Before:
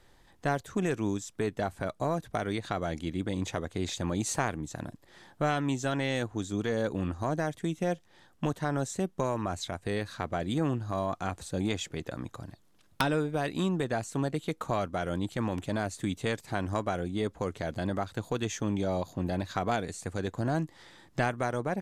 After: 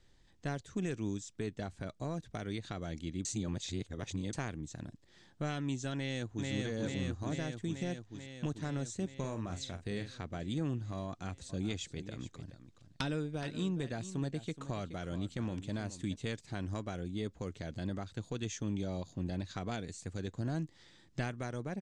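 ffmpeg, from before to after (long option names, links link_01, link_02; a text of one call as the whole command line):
ffmpeg -i in.wav -filter_complex "[0:a]asplit=2[link_01][link_02];[link_02]afade=type=in:start_time=5.94:duration=0.01,afade=type=out:start_time=6.5:duration=0.01,aecho=0:1:440|880|1320|1760|2200|2640|3080|3520|3960|4400|4840|5280:0.891251|0.668438|0.501329|0.375996|0.281997|0.211498|0.158624|0.118968|0.0892257|0.0669193|0.0501895|0.0376421[link_03];[link_01][link_03]amix=inputs=2:normalize=0,asettb=1/sr,asplit=3[link_04][link_05][link_06];[link_04]atrim=end=9.164[link_07];[link_05]atrim=start=9.16:end=10.18,asetpts=PTS-STARTPTS,afade=type=in:duration=0.004:curve=qsin,afade=type=out:start_time=1.016:duration=0.004:curve=qsin,asplit=2[link_08][link_09];[link_09]adelay=44,volume=-9.5dB[link_10];[link_08][link_10]amix=inputs=2:normalize=0,atrim=end_sample=44982[link_11];[link_06]atrim=start=10.176[link_12];[link_07][link_11]acrossfade=duration=0.004:curve1=hsin:curve2=qsin[link_13];[link_13][link_12]acrossfade=duration=0.004:curve1=qsin:curve2=hsin,asettb=1/sr,asplit=3[link_14][link_15][link_16];[link_14]atrim=end=11.074[link_17];[link_15]atrim=start=11.07:end=16.16,asetpts=PTS-STARTPTS,afade=type=in:duration=0.004:curve=qsin,afade=type=out:start_time=5.086:duration=0.004:curve=qsin,aecho=1:1:423:0.224,atrim=end_sample=224469[link_18];[link_16]atrim=start=16.156[link_19];[link_17][link_18]acrossfade=duration=0.004:curve1=hsin:curve2=qsin[link_20];[link_20][link_19]acrossfade=duration=0.004:curve1=qsin:curve2=hsin,asplit=3[link_21][link_22][link_23];[link_21]atrim=end=3.252[link_24];[link_22]atrim=start=3.248:end=4.332,asetpts=PTS-STARTPTS,areverse[link_25];[link_23]atrim=start=4.328[link_26];[link_24][link_25]acrossfade=duration=0.004:curve1=hsin:curve2=hsin[link_27];[link_27][link_26]acrossfade=duration=0.004:curve1=hsin:curve2=hsin,lowpass=frequency=7800:width=0.5412,lowpass=frequency=7800:width=1.3066,equalizer=frequency=900:width_type=o:width=2.3:gain=-10.5,volume=-3.5dB" out.wav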